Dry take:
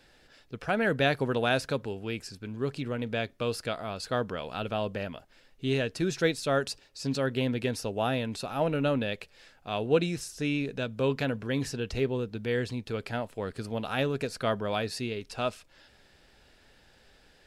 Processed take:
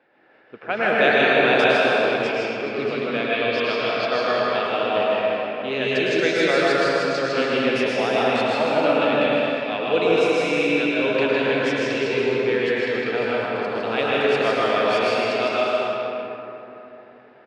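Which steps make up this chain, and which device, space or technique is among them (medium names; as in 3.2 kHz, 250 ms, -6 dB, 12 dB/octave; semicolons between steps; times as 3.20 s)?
station announcement (band-pass 340–4800 Hz; peaking EQ 2.3 kHz +5 dB 0.51 oct; loudspeakers at several distances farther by 54 m -4 dB, 78 m -11 dB; reverberation RT60 3.6 s, pre-delay 101 ms, DRR -6 dB); level-controlled noise filter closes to 1.3 kHz, open at -19.5 dBFS; 3.32–4.66 s: resonant high shelf 6.2 kHz -9.5 dB, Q 1.5; trim +3 dB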